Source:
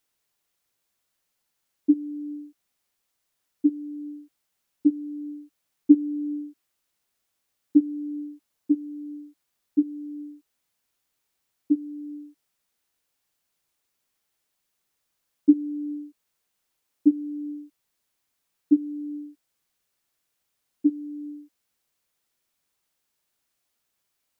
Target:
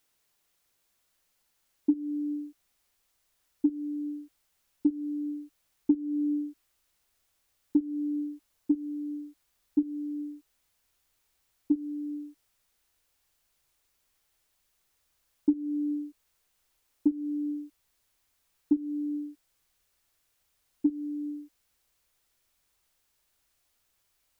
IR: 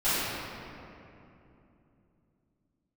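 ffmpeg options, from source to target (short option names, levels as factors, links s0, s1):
-af "asubboost=boost=4:cutoff=81,acompressor=threshold=0.0562:ratio=6,volume=1.5"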